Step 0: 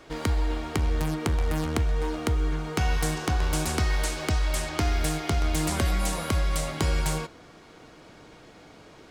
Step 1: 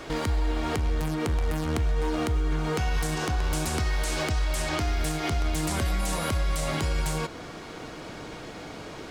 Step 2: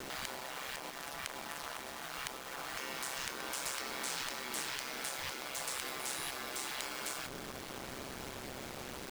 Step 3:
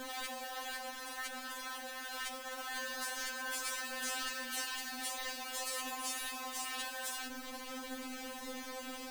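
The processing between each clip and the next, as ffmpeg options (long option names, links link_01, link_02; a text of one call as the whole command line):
ffmpeg -i in.wav -filter_complex "[0:a]asplit=2[link_01][link_02];[link_02]acompressor=threshold=-34dB:ratio=6,volume=2dB[link_03];[link_01][link_03]amix=inputs=2:normalize=0,alimiter=limit=-21.5dB:level=0:latency=1:release=129,volume=3dB" out.wav
ffmpeg -i in.wav -af "aeval=exprs='val(0)*sin(2*PI*66*n/s)':channel_layout=same,afftfilt=real='re*lt(hypot(re,im),0.0501)':imag='im*lt(hypot(re,im),0.0501)':win_size=1024:overlap=0.75,acrusher=bits=6:mix=0:aa=0.000001,volume=-2.5dB" out.wav
ffmpeg -i in.wav -af "afftfilt=real='re*3.46*eq(mod(b,12),0)':imag='im*3.46*eq(mod(b,12),0)':win_size=2048:overlap=0.75,volume=2.5dB" out.wav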